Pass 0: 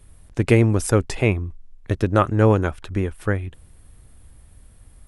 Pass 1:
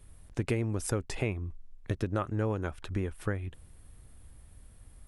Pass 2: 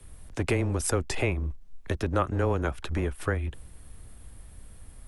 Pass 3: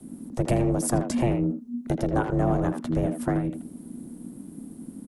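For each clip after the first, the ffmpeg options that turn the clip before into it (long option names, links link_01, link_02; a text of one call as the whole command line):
ffmpeg -i in.wav -af "acompressor=threshold=-23dB:ratio=4,volume=-5dB" out.wav
ffmpeg -i in.wav -filter_complex "[0:a]afreqshift=-13,acrossover=split=340|870|3200[link_01][link_02][link_03][link_04];[link_01]volume=33dB,asoftclip=hard,volume=-33dB[link_05];[link_05][link_02][link_03][link_04]amix=inputs=4:normalize=0,volume=7dB" out.wav
ffmpeg -i in.wav -filter_complex "[0:a]equalizer=frequency=2300:width_type=o:width=2.5:gain=-13,aeval=exprs='val(0)*sin(2*PI*240*n/s)':channel_layout=same,asplit=2[link_01][link_02];[link_02]adelay=80,highpass=300,lowpass=3400,asoftclip=type=hard:threshold=-26dB,volume=-7dB[link_03];[link_01][link_03]amix=inputs=2:normalize=0,volume=7dB" out.wav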